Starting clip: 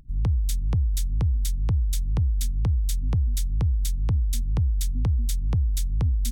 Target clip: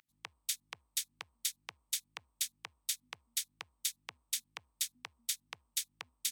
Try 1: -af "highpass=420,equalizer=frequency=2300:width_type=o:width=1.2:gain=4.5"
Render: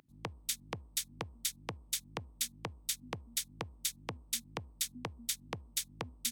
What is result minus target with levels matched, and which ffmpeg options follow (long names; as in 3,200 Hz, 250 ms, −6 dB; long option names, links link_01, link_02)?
500 Hz band +17.0 dB
-af "highpass=1500,equalizer=frequency=2300:width_type=o:width=1.2:gain=4.5"